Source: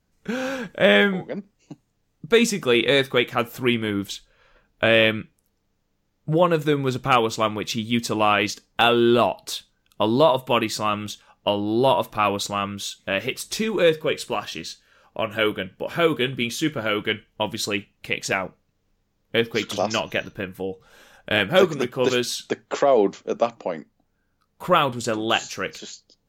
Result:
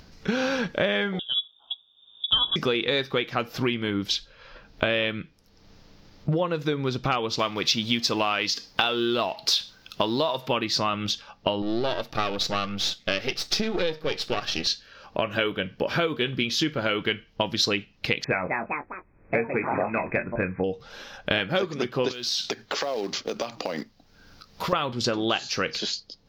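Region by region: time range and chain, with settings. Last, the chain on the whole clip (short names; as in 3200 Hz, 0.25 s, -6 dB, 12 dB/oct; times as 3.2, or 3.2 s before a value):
1.19–2.56 air absorption 170 m + inverted band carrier 3600 Hz + Butterworth band-stop 2100 Hz, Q 1
7.39–10.48 G.711 law mismatch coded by mu + tilt +1.5 dB/oct
11.62–14.67 half-wave gain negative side -12 dB + Butterworth band-stop 1000 Hz, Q 7.2
18.24–20.64 echoes that change speed 0.213 s, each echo +4 st, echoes 3, each echo -6 dB + brick-wall FIR low-pass 2600 Hz + doubler 22 ms -8 dB
22.11–24.73 high shelf 2400 Hz +8 dB + compressor 16:1, threshold -31 dBFS + short-mantissa float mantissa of 2-bit
whole clip: compressor 10:1, threshold -29 dBFS; resonant high shelf 6500 Hz -9.5 dB, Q 3; upward compressor, threshold -46 dBFS; gain +7 dB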